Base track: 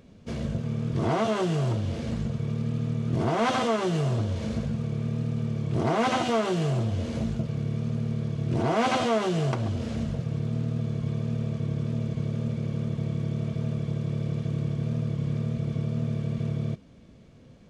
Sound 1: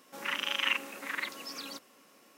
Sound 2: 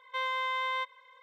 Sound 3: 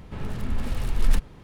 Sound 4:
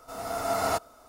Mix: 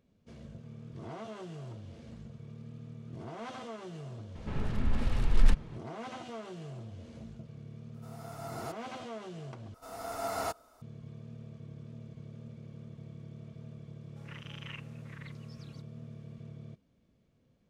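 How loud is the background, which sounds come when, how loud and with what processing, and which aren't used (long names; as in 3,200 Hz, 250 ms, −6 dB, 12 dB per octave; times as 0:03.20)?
base track −18 dB
0:04.35: mix in 3 −2 dB + high-frequency loss of the air 62 metres
0:07.94: mix in 4 −15.5 dB
0:09.74: overwrite with 4 −7.5 dB
0:14.03: mix in 1 −17 dB + Bessel low-pass filter 7,300 Hz
not used: 2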